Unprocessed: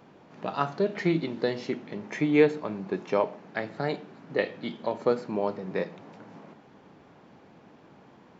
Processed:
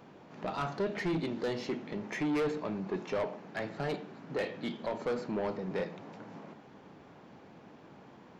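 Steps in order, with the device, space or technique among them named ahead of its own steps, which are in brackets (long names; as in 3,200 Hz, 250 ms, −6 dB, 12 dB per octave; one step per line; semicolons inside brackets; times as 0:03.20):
saturation between pre-emphasis and de-emphasis (high-shelf EQ 3,100 Hz +10 dB; soft clipping −27.5 dBFS, distortion −5 dB; high-shelf EQ 3,100 Hz −10 dB)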